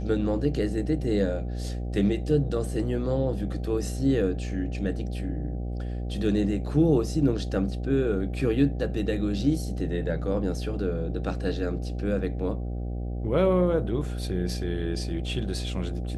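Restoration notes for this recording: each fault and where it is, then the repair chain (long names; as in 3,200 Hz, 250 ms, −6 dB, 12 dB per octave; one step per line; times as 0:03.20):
mains buzz 60 Hz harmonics 13 −31 dBFS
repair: hum removal 60 Hz, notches 13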